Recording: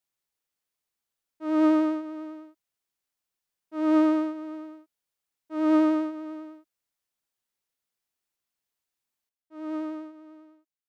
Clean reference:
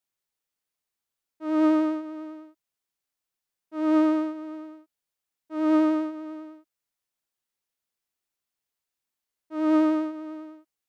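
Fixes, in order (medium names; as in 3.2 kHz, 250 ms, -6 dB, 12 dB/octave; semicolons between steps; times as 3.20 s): trim 0 dB, from 9.29 s +11.5 dB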